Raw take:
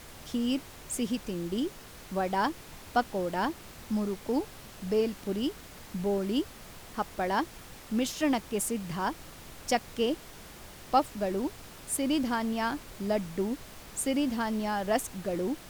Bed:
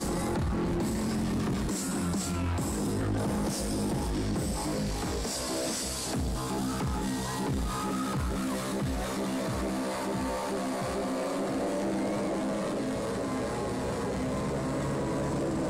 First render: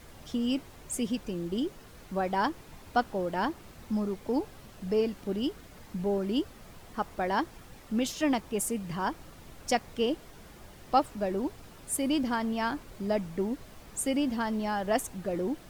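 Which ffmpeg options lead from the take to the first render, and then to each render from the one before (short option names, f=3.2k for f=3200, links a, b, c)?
-af "afftdn=nr=7:nf=-49"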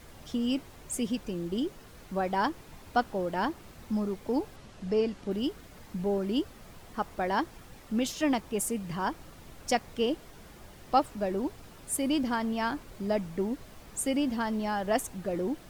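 -filter_complex "[0:a]asettb=1/sr,asplit=3[a][b][c];[a]atrim=end=4.564[d];[b]atrim=start=4.56:end=5.31,asetpts=PTS-STARTPTS,afade=t=in:d=0.004:c=qsin,afade=t=out:st=0.746:d=0.004:c=qsin,lowpass=8.1k[e];[c]atrim=start=5.306[f];[d][e]acrossfade=d=0.004:c1=hsin:c2=qsin[g];[g][f]acrossfade=d=0.004:c1=qsin:c2=hsin"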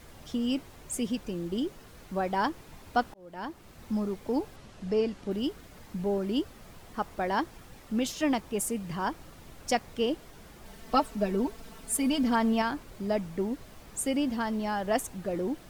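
-filter_complex "[0:a]asettb=1/sr,asplit=3[a][b][c];[a]atrim=end=10.654[d];[b]atrim=start=10.65:end=12.62,asetpts=PTS-STARTPTS,afade=t=in:d=0.004:c=qsin,afade=t=out:st=1.966:d=0.004:c=qsin,aecho=1:1:4.5:0.88,atrim=end_sample=86877[e];[c]atrim=start=12.616[f];[d][e]acrossfade=d=0.004:c1=hsin:c2=qsin[g];[g][f]acrossfade=d=0.004:c1=qsin:c2=hsin,asplit=2[h][i];[h]atrim=end=3.14,asetpts=PTS-STARTPTS,afade=t=out:st=3.136:d=0.004:c=hsin[j];[i]atrim=start=3.14,asetpts=PTS-STARTPTS,afade=t=in:d=0.74[k];[j][k]concat=n=2:v=0:a=1"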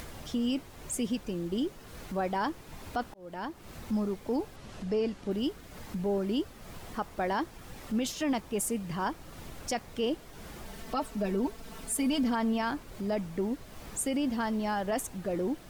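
-af "alimiter=limit=-22dB:level=0:latency=1:release=20,acompressor=mode=upward:threshold=-36dB:ratio=2.5"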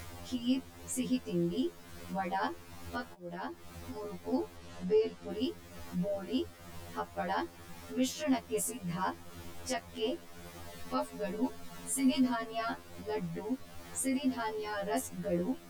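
-af "acrusher=bits=11:mix=0:aa=0.000001,afftfilt=real='re*2*eq(mod(b,4),0)':imag='im*2*eq(mod(b,4),0)':win_size=2048:overlap=0.75"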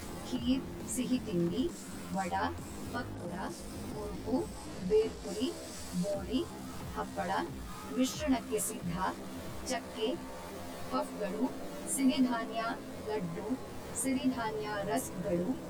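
-filter_complex "[1:a]volume=-13.5dB[a];[0:a][a]amix=inputs=2:normalize=0"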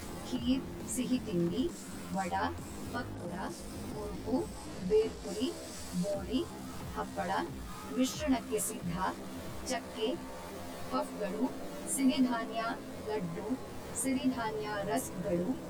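-af anull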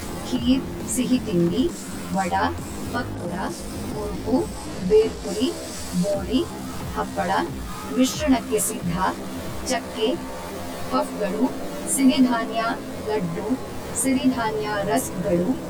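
-af "volume=11.5dB"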